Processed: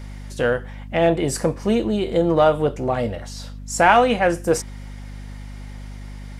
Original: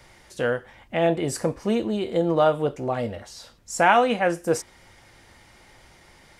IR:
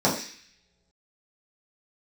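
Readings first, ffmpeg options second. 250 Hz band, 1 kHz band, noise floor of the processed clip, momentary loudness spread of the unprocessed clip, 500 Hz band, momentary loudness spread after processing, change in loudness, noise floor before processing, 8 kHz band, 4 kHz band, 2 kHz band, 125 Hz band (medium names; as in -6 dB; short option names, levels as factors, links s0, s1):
+4.0 dB, +3.5 dB, -35 dBFS, 15 LU, +4.0 dB, 22 LU, +4.0 dB, -54 dBFS, +4.5 dB, +4.0 dB, +3.5 dB, +5.5 dB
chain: -filter_complex "[0:a]asplit=2[s0][s1];[s1]asoftclip=type=tanh:threshold=0.0891,volume=0.282[s2];[s0][s2]amix=inputs=2:normalize=0,aeval=exprs='val(0)+0.0158*(sin(2*PI*50*n/s)+sin(2*PI*2*50*n/s)/2+sin(2*PI*3*50*n/s)/3+sin(2*PI*4*50*n/s)/4+sin(2*PI*5*50*n/s)/5)':c=same,volume=1.33"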